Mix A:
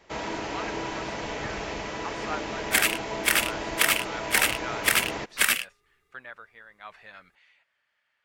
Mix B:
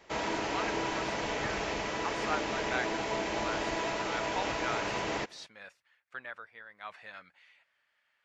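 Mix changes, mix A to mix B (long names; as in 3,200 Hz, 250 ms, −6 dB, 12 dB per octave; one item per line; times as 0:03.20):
second sound: muted
master: add low-shelf EQ 180 Hz −4 dB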